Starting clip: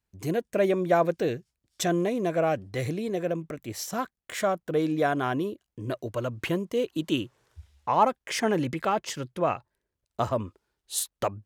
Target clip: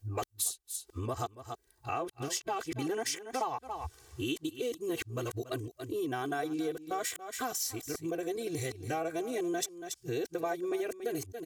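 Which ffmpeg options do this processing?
-af "areverse,bass=f=250:g=1,treble=f=4k:g=11,aecho=1:1:2.6:0.9,aecho=1:1:281:0.15,acompressor=threshold=-39dB:ratio=4,volume=4dB"

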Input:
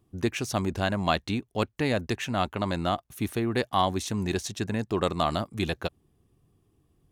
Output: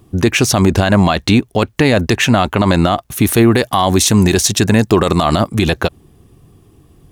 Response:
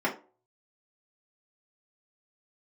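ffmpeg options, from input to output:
-filter_complex "[0:a]asettb=1/sr,asplit=3[a][b][c];[a]atrim=end=3.264[d];[b]atrim=start=3.26:end=5.26,asetpts=PTS-STARTPTS,afade=t=in:d=0.004:c=qsin,afade=t=out:st=1.996:d=0.004:c=qsin,highshelf=f=6.9k:g=7.5[e];[c]atrim=start=5.256[f];[d][e]acrossfade=d=0.004:c1=hsin:c2=qsin[g];[g][f]acrossfade=d=0.004:c1=qsin:c2=hsin,alimiter=level_in=21dB:limit=-1dB:release=50:level=0:latency=1,volume=-1dB"

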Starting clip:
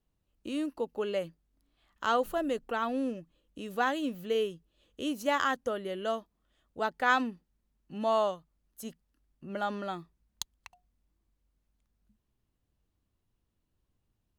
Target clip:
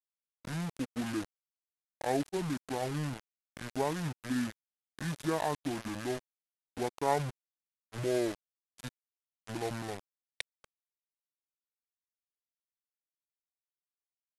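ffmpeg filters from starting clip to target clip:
-af "acrusher=bits=5:mix=0:aa=0.000001,asetrate=24750,aresample=44100,atempo=1.7818,volume=-3.5dB"

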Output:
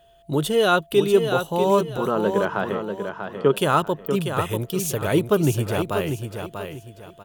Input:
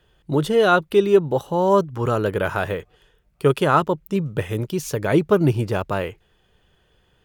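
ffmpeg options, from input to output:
-filter_complex "[0:a]asettb=1/sr,asplit=3[a][b][c];[a]atrim=end=1.974[d];[b]atrim=start=1.97:end=3.56,asetpts=PTS-STARTPTS,afade=t=in:d=0.004:c=qsin,afade=t=out:st=1.586:d=0.004:c=qsin,highpass=f=120:w=0.5412,highpass=f=120:w=1.3066,equalizer=f=120:t=q:w=4:g=-10,equalizer=f=200:t=q:w=4:g=8,equalizer=f=390:t=q:w=4:g=3,equalizer=f=1k:t=q:w=4:g=5,equalizer=f=2.5k:t=q:w=4:g=-8,equalizer=f=3.8k:t=q:w=4:g=-9,lowpass=f=4.4k:w=0.5412,lowpass=f=4.4k:w=1.3066[e];[c]atrim=start=3.556[f];[d][e]acrossfade=d=0.004:c1=hsin:c2=qsin[g];[g][f]acrossfade=d=0.004:c1=qsin:c2=hsin,aeval=exprs='val(0)+0.00282*sin(2*PI*680*n/s)':c=same,asplit=2[h][i];[i]aecho=0:1:641|1282|1923|2564:0.447|0.13|0.0376|0.0109[j];[h][j]amix=inputs=2:normalize=0,aexciter=amount=1.6:drive=6.4:freq=2.8k,volume=-2.5dB"

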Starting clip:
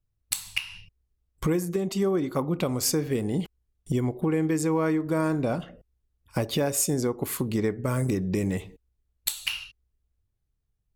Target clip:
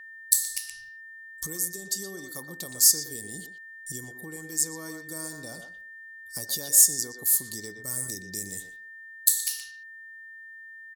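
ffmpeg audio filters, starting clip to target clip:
-filter_complex "[0:a]asplit=2[a][b];[b]adelay=120,highpass=300,lowpass=3.4k,asoftclip=type=hard:threshold=-16.5dB,volume=-6dB[c];[a][c]amix=inputs=2:normalize=0,aexciter=amount=11.2:drive=9.9:freq=4.2k,aeval=exprs='val(0)+0.0562*sin(2*PI*1800*n/s)':c=same,volume=-17.5dB"

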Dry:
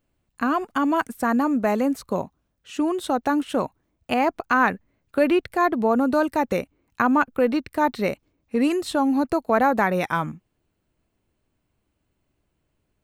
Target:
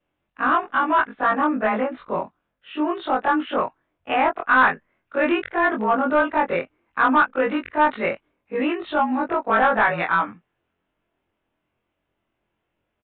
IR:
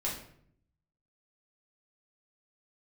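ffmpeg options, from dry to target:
-filter_complex "[0:a]afftfilt=real='re':imag='-im':win_size=2048:overlap=0.75,adynamicequalizer=threshold=0.0112:dfrequency=1500:dqfactor=1.2:tfrequency=1500:tqfactor=1.2:attack=5:release=100:ratio=0.375:range=3:mode=boostabove:tftype=bell,asplit=2[a][b];[b]highpass=f=720:p=1,volume=14dB,asoftclip=type=tanh:threshold=-6dB[c];[a][c]amix=inputs=2:normalize=0,lowpass=f=2.6k:p=1,volume=-6dB,aresample=8000,aresample=44100"

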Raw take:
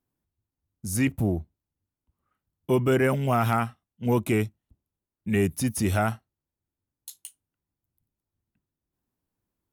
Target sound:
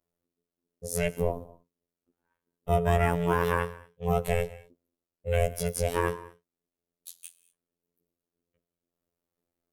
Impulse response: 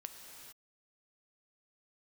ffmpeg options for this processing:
-filter_complex "[0:a]asplit=2[a][b];[1:a]atrim=start_sample=2205,afade=t=out:st=0.29:d=0.01,atrim=end_sample=13230[c];[b][c]afir=irnorm=-1:irlink=0,volume=-1.5dB[d];[a][d]amix=inputs=2:normalize=0,aeval=exprs='val(0)*sin(2*PI*310*n/s)':c=same,afftfilt=real='hypot(re,im)*cos(PI*b)':imag='0':win_size=2048:overlap=0.75"

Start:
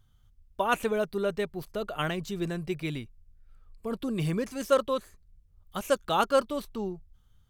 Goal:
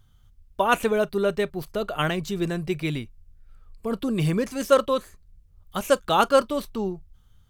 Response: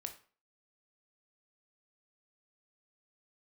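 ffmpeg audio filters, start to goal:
-filter_complex "[0:a]asplit=2[a][b];[1:a]atrim=start_sample=2205,atrim=end_sample=3528,asetrate=66150,aresample=44100[c];[b][c]afir=irnorm=-1:irlink=0,volume=-6.5dB[d];[a][d]amix=inputs=2:normalize=0,volume=4dB"

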